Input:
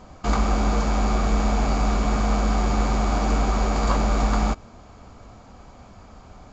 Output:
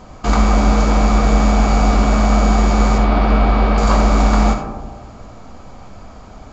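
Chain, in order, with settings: 2.98–3.78 LPF 4000 Hz 24 dB/oct; digital reverb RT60 1.4 s, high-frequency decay 0.25×, pre-delay 20 ms, DRR 4.5 dB; gain +6 dB

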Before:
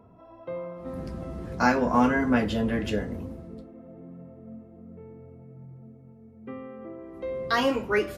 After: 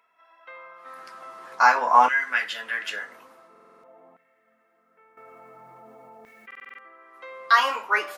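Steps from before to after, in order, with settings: LFO high-pass saw down 0.48 Hz 850–2000 Hz; stuck buffer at 3.51/6.46, samples 2048, times 6; 5.17–6.54 fast leveller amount 70%; gain +3 dB

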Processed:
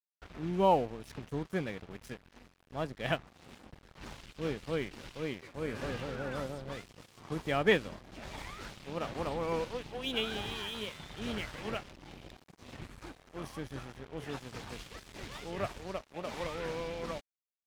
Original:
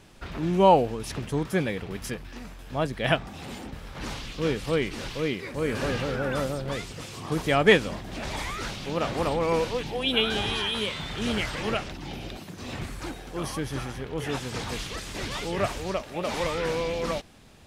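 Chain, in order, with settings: high shelf 5400 Hz -7 dB; crossover distortion -39 dBFS; gain -7.5 dB

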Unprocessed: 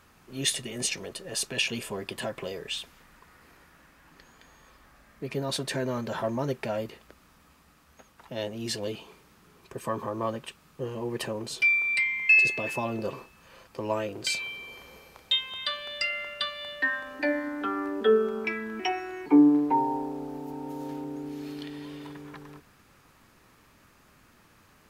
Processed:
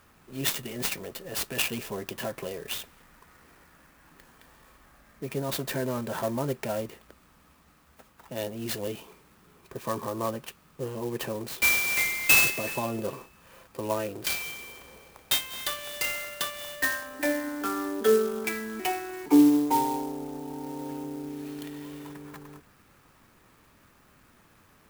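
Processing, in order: clock jitter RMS 0.045 ms

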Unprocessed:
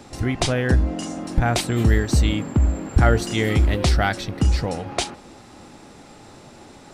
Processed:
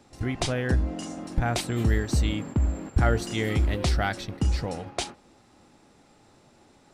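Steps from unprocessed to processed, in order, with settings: gate -31 dBFS, range -7 dB; gain -6 dB

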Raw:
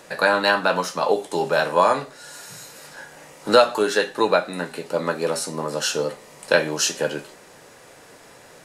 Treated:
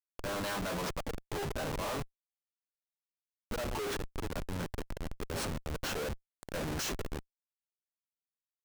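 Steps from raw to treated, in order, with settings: auto swell 0.187 s; Schmitt trigger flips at -27.5 dBFS; gain -7.5 dB

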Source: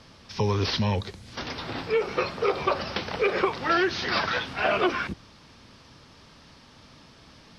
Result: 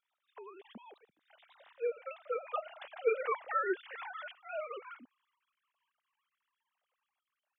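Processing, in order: sine-wave speech; Doppler pass-by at 3.24, 18 m/s, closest 10 m; gain -8 dB

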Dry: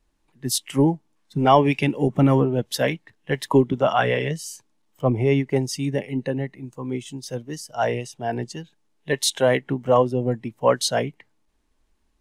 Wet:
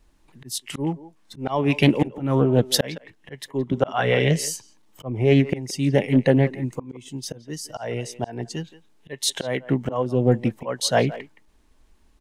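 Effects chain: low shelf 150 Hz +2.5 dB; auto swell 0.571 s; speakerphone echo 0.17 s, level -15 dB; Doppler distortion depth 0.17 ms; gain +8 dB

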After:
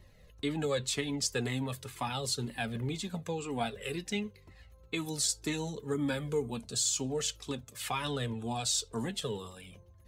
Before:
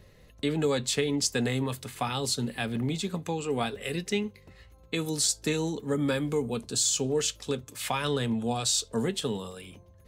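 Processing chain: cascading flanger falling 2 Hz

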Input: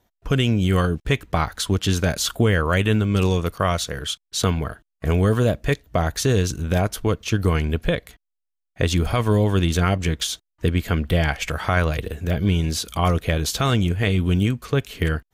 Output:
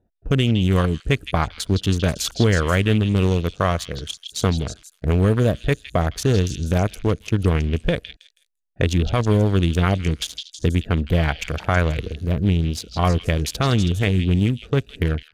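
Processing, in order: Wiener smoothing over 41 samples; delay with a stepping band-pass 0.161 s, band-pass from 3700 Hz, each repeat 0.7 oct, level -4 dB; gain +1.5 dB

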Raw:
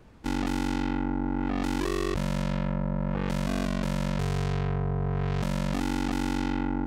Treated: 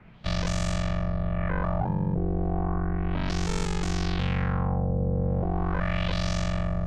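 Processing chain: frequency shift -220 Hz; LFO low-pass sine 0.34 Hz 500–7700 Hz; gain +1.5 dB

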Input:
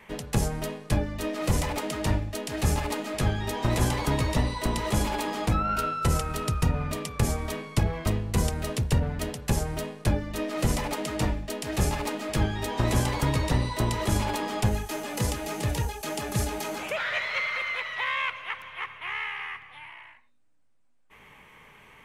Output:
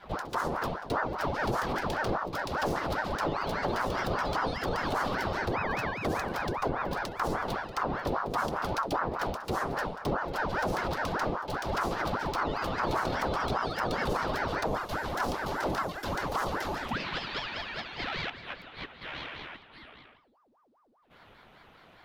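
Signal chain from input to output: tracing distortion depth 0.027 ms; graphic EQ 125/250/500/1000/2000/4000/8000 Hz +3/+10/+8/+3/-5/+10/-9 dB; limiter -14.5 dBFS, peak gain reduction 10 dB; pre-echo 78 ms -17 dB; ring modulator with a swept carrier 730 Hz, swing 70%, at 5 Hz; gain -4.5 dB

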